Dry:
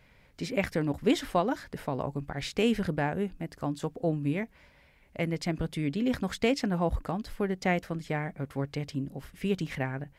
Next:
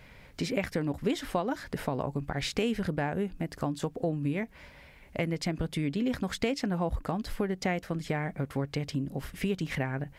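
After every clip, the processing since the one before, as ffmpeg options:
ffmpeg -i in.wav -af "acompressor=threshold=-37dB:ratio=3,volume=7.5dB" out.wav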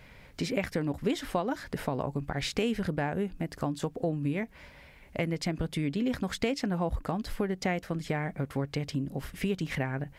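ffmpeg -i in.wav -af anull out.wav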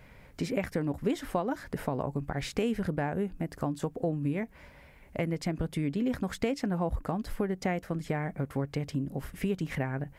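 ffmpeg -i in.wav -af "equalizer=frequency=3900:width=0.75:gain=-6.5" out.wav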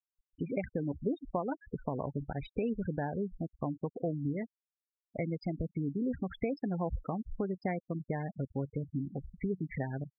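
ffmpeg -i in.wav -af "afftfilt=real='re*gte(hypot(re,im),0.0398)':imag='im*gte(hypot(re,im),0.0398)':win_size=1024:overlap=0.75,volume=-3.5dB" out.wav

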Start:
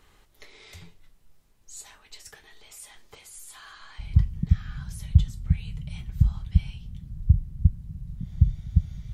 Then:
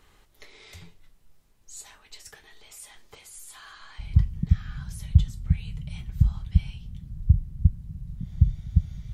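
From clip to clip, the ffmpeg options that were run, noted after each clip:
ffmpeg -i in.wav -af anull out.wav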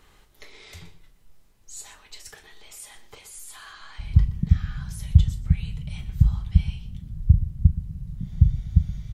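ffmpeg -i in.wav -filter_complex "[0:a]asplit=2[link_01][link_02];[link_02]adelay=38,volume=-13dB[link_03];[link_01][link_03]amix=inputs=2:normalize=0,asplit=2[link_04][link_05];[link_05]adelay=122.4,volume=-14dB,highshelf=frequency=4000:gain=-2.76[link_06];[link_04][link_06]amix=inputs=2:normalize=0,volume=2.5dB" out.wav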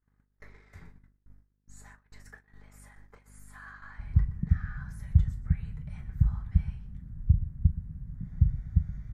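ffmpeg -i in.wav -af "aeval=exprs='val(0)+0.00562*(sin(2*PI*50*n/s)+sin(2*PI*2*50*n/s)/2+sin(2*PI*3*50*n/s)/3+sin(2*PI*4*50*n/s)/4+sin(2*PI*5*50*n/s)/5)':channel_layout=same,agate=range=-34dB:threshold=-42dB:ratio=16:detection=peak,highshelf=frequency=2300:width_type=q:width=3:gain=-10,volume=-6.5dB" out.wav

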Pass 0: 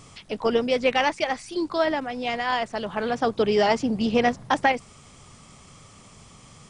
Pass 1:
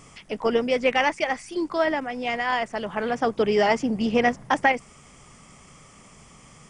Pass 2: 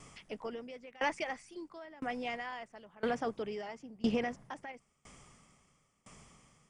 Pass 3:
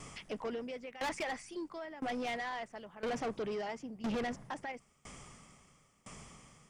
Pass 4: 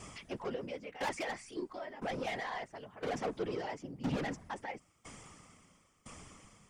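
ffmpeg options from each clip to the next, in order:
ffmpeg -i in.wav -af "equalizer=frequency=100:width_type=o:width=0.33:gain=-11,equalizer=frequency=2000:width_type=o:width=0.33:gain=4,equalizer=frequency=4000:width_type=o:width=0.33:gain=-10" out.wav
ffmpeg -i in.wav -af "alimiter=limit=-15.5dB:level=0:latency=1:release=48,aeval=exprs='val(0)*pow(10,-25*if(lt(mod(0.99*n/s,1),2*abs(0.99)/1000),1-mod(0.99*n/s,1)/(2*abs(0.99)/1000),(mod(0.99*n/s,1)-2*abs(0.99)/1000)/(1-2*abs(0.99)/1000))/20)':channel_layout=same,volume=-4dB" out.wav
ffmpeg -i in.wav -af "asoftclip=type=tanh:threshold=-38dB,volume=5.5dB" out.wav
ffmpeg -i in.wav -af "afftfilt=real='hypot(re,im)*cos(2*PI*random(0))':imag='hypot(re,im)*sin(2*PI*random(1))':win_size=512:overlap=0.75,volume=5.5dB" out.wav

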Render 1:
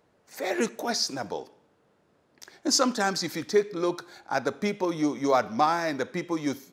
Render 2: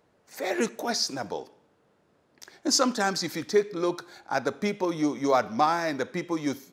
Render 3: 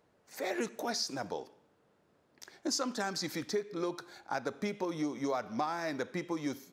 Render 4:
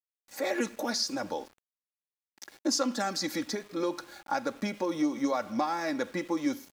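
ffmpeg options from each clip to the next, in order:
ffmpeg -i in.wav -af anull out.wav
ffmpeg -i in.wav -af "acompressor=threshold=-27dB:ratio=4,volume=-4dB" out.wav
ffmpeg -i in.wav -af "aecho=1:1:3.6:0.61,aeval=exprs='val(0)*gte(abs(val(0)),0.00224)':channel_layout=same,volume=3dB" out.wav

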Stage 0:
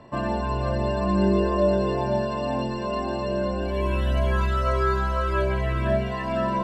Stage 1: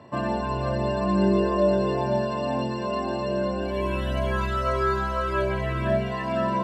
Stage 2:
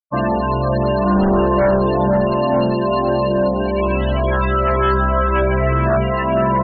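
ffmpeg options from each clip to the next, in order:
ffmpeg -i in.wav -af "highpass=frequency=75:width=0.5412,highpass=frequency=75:width=1.3066" out.wav
ffmpeg -i in.wav -filter_complex "[0:a]aeval=exprs='0.335*(cos(1*acos(clip(val(0)/0.335,-1,1)))-cos(1*PI/2))+0.15*(cos(5*acos(clip(val(0)/0.335,-1,1)))-cos(5*PI/2))':channel_layout=same,afftfilt=real='re*gte(hypot(re,im),0.1)':imag='im*gte(hypot(re,im),0.1)':win_size=1024:overlap=0.75,asplit=2[link_01][link_02];[link_02]adelay=932.9,volume=-8dB,highshelf=frequency=4000:gain=-21[link_03];[link_01][link_03]amix=inputs=2:normalize=0" out.wav

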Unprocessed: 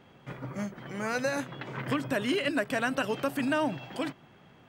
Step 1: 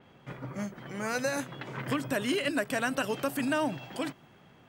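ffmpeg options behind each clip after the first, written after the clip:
ffmpeg -i in.wav -af "adynamicequalizer=threshold=0.00316:dfrequency=5400:dqfactor=0.7:tfrequency=5400:tqfactor=0.7:attack=5:release=100:ratio=0.375:range=3.5:mode=boostabove:tftype=highshelf,volume=-1dB" out.wav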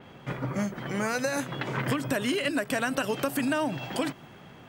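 ffmpeg -i in.wav -af "acompressor=threshold=-33dB:ratio=6,volume=8.5dB" out.wav

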